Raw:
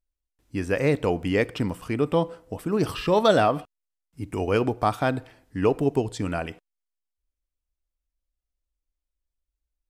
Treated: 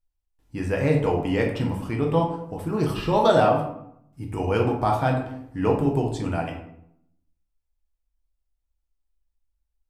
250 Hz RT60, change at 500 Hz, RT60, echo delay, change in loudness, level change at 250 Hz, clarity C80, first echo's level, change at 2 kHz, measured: 0.95 s, +0.5 dB, 0.70 s, no echo audible, +1.0 dB, +1.0 dB, 9.5 dB, no echo audible, −1.5 dB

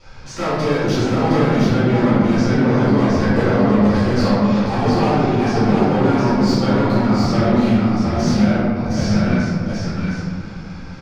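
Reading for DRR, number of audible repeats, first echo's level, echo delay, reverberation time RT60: −14.5 dB, 1, −2.5 dB, 713 ms, 2.1 s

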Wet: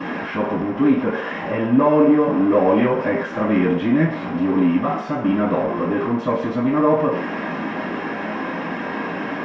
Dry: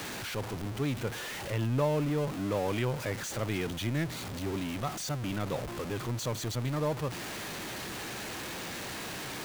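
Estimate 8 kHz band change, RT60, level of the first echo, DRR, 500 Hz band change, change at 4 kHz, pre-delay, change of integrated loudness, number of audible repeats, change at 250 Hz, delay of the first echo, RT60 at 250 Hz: below −15 dB, 0.55 s, no echo audible, −16.5 dB, +14.5 dB, −1.0 dB, 3 ms, +14.0 dB, no echo audible, +18.0 dB, no echo audible, 0.45 s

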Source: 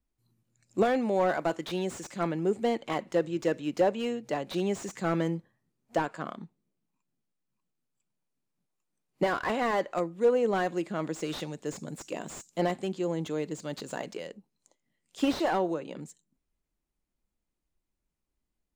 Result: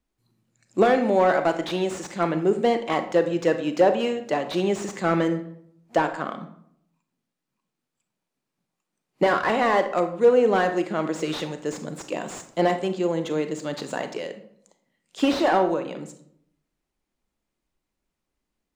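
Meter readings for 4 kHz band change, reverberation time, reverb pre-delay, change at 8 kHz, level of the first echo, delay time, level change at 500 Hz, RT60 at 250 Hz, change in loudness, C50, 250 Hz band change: +6.5 dB, 0.70 s, 30 ms, +4.0 dB, no echo audible, no echo audible, +7.5 dB, 0.85 s, +7.0 dB, 10.5 dB, +6.0 dB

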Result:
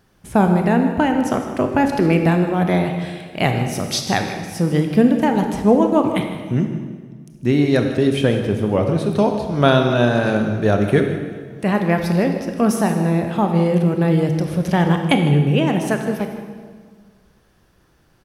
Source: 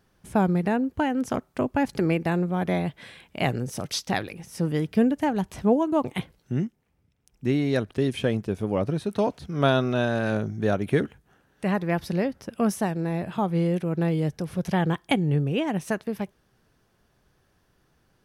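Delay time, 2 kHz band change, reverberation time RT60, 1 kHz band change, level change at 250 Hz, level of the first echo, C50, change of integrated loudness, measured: 156 ms, +7.5 dB, 1.7 s, +8.0 dB, +8.0 dB, −14.0 dB, 5.5 dB, +8.0 dB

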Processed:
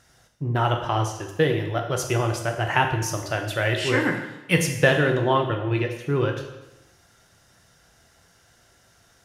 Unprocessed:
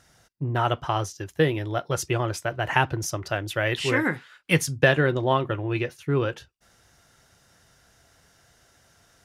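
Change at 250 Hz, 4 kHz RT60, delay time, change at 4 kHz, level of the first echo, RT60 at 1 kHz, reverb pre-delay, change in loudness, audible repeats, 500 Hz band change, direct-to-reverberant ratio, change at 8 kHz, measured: +1.5 dB, 0.95 s, no echo audible, +2.0 dB, no echo audible, 1.0 s, 7 ms, +1.5 dB, no echo audible, +1.5 dB, 4.0 dB, +1.5 dB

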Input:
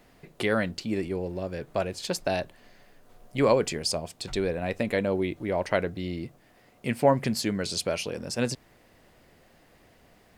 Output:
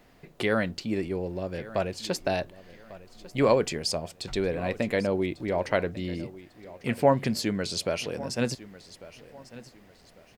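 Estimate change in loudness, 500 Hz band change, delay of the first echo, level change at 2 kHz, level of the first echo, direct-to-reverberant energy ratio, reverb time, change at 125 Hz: 0.0 dB, 0.0 dB, 1,147 ms, 0.0 dB, −18.0 dB, no reverb audible, no reverb audible, 0.0 dB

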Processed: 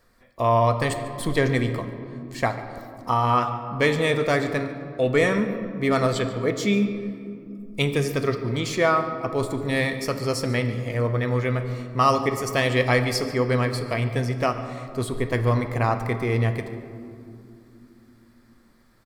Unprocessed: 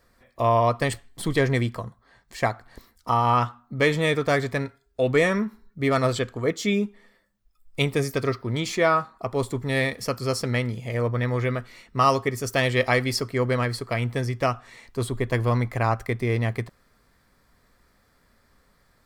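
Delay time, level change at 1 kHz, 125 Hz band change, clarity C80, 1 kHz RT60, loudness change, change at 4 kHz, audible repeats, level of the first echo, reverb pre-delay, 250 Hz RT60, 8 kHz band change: 144 ms, +0.5 dB, +1.0 dB, 10.0 dB, 2.3 s, +1.0 dB, +0.5 dB, 1, −18.5 dB, 3 ms, 4.9 s, 0.0 dB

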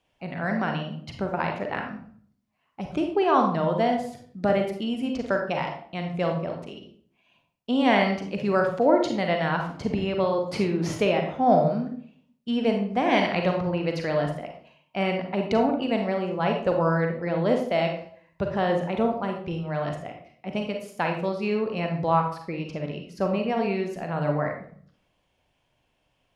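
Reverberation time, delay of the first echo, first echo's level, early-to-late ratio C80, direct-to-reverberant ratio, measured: 0.55 s, no echo audible, no echo audible, 9.5 dB, 3.0 dB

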